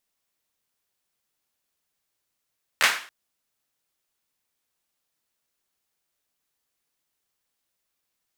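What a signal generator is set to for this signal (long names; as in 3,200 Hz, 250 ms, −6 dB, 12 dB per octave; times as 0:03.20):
synth clap length 0.28 s, bursts 3, apart 13 ms, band 1,700 Hz, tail 0.43 s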